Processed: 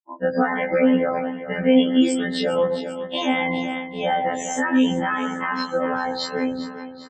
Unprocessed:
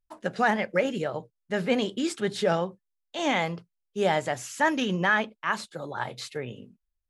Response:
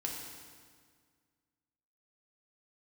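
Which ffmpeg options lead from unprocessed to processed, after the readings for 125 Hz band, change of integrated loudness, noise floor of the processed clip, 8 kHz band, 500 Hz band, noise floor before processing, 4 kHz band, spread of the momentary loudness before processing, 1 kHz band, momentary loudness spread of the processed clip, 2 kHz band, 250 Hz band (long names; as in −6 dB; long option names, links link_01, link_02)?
+1.0 dB, +5.5 dB, −38 dBFS, +5.0 dB, +6.0 dB, −81 dBFS, +5.5 dB, 12 LU, +4.0 dB, 9 LU, +1.5 dB, +10.5 dB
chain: -filter_complex "[0:a]lowshelf=frequency=270:gain=5,asplit=2[link_01][link_02];[link_02]adelay=105,volume=-13dB,highshelf=frequency=4000:gain=-2.36[link_03];[link_01][link_03]amix=inputs=2:normalize=0,asplit=2[link_04][link_05];[1:a]atrim=start_sample=2205,asetrate=41454,aresample=44100,lowshelf=frequency=410:gain=-8.5[link_06];[link_05][link_06]afir=irnorm=-1:irlink=0,volume=-9dB[link_07];[link_04][link_07]amix=inputs=2:normalize=0,acompressor=threshold=-26dB:ratio=2.5,afftfilt=real='re*gte(hypot(re,im),0.0282)':imag='im*gte(hypot(re,im),0.0282)':win_size=1024:overlap=0.75,asplit=2[link_08][link_09];[link_09]aecho=0:1:398|796|1194|1592|1990:0.211|0.11|0.0571|0.0297|0.0155[link_10];[link_08][link_10]amix=inputs=2:normalize=0,afftfilt=real='hypot(re,im)*cos(PI*b)':imag='0':win_size=2048:overlap=0.75,equalizer=frequency=74:width=4.5:gain=-14.5,alimiter=level_in=20.5dB:limit=-1dB:release=50:level=0:latency=1,afftfilt=real='re*1.73*eq(mod(b,3),0)':imag='im*1.73*eq(mod(b,3),0)':win_size=2048:overlap=0.75,volume=-4dB"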